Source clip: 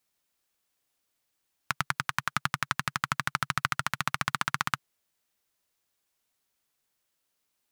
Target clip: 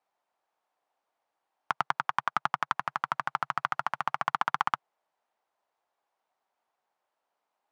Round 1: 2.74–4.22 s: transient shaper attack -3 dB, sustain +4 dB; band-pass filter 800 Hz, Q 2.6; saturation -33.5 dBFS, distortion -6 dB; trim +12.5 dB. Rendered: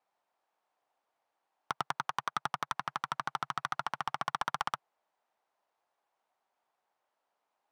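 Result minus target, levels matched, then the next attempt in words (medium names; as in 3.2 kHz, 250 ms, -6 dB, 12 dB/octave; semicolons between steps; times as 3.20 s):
saturation: distortion +11 dB
2.74–4.22 s: transient shaper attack -3 dB, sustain +4 dB; band-pass filter 800 Hz, Q 2.6; saturation -22.5 dBFS, distortion -17 dB; trim +12.5 dB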